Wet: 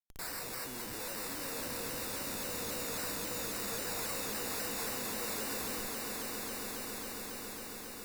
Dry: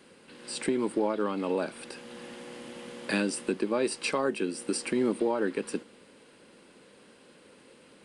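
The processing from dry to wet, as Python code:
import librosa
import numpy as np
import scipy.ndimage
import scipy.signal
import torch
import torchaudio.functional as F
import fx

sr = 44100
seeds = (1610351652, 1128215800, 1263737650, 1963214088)

p1 = fx.spec_delay(x, sr, highs='early', ms=289)
p2 = fx.ripple_eq(p1, sr, per_octave=1.0, db=9)
p3 = fx.schmitt(p2, sr, flips_db=-43.0)
p4 = fx.sample_hold(p3, sr, seeds[0], rate_hz=3200.0, jitter_pct=0)
p5 = librosa.effects.preemphasis(p4, coef=0.8, zi=[0.0])
p6 = p5 + fx.echo_swell(p5, sr, ms=137, loudest=8, wet_db=-9.0, dry=0)
y = fx.vibrato_shape(p6, sr, shape='saw_down', rate_hz=3.7, depth_cents=100.0)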